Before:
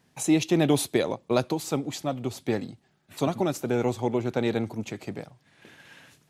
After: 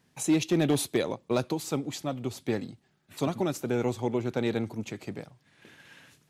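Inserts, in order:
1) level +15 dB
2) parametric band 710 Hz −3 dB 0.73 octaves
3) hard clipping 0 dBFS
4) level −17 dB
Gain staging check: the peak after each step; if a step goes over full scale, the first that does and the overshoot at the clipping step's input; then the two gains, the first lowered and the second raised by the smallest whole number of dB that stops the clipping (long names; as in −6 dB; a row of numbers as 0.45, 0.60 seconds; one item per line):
+6.0, +5.5, 0.0, −17.0 dBFS
step 1, 5.5 dB
step 1 +9 dB, step 4 −11 dB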